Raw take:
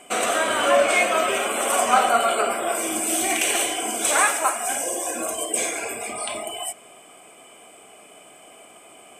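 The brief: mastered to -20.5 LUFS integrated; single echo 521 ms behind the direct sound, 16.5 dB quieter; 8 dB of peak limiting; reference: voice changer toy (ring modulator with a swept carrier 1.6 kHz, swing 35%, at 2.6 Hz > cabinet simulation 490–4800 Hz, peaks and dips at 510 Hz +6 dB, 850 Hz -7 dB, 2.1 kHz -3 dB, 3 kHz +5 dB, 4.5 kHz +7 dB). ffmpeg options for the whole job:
-af "alimiter=limit=0.211:level=0:latency=1,aecho=1:1:521:0.15,aeval=exprs='val(0)*sin(2*PI*1600*n/s+1600*0.35/2.6*sin(2*PI*2.6*n/s))':c=same,highpass=490,equalizer=f=510:t=q:w=4:g=6,equalizer=f=850:t=q:w=4:g=-7,equalizer=f=2100:t=q:w=4:g=-3,equalizer=f=3000:t=q:w=4:g=5,equalizer=f=4500:t=q:w=4:g=7,lowpass=f=4800:w=0.5412,lowpass=f=4800:w=1.3066,volume=1.88"

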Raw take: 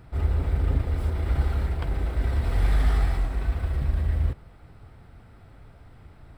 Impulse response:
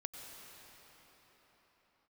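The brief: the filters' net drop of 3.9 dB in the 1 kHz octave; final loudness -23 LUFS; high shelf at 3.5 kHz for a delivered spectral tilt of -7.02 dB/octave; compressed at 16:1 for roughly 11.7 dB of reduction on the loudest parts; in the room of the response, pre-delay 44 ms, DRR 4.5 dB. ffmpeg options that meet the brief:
-filter_complex "[0:a]equalizer=f=1000:t=o:g=-6,highshelf=f=3500:g=4.5,acompressor=threshold=0.0355:ratio=16,asplit=2[s0][s1];[1:a]atrim=start_sample=2205,adelay=44[s2];[s1][s2]afir=irnorm=-1:irlink=0,volume=0.75[s3];[s0][s3]amix=inputs=2:normalize=0,volume=3.76"

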